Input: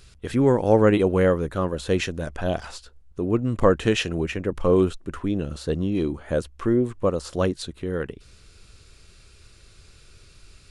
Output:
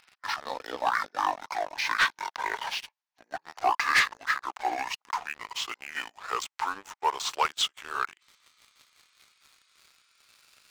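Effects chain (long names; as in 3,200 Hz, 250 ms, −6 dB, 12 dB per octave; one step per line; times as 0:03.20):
pitch glide at a constant tempo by −11 semitones ending unshifted
high-pass filter 870 Hz 24 dB per octave
high-shelf EQ 8,300 Hz −8 dB
leveller curve on the samples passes 3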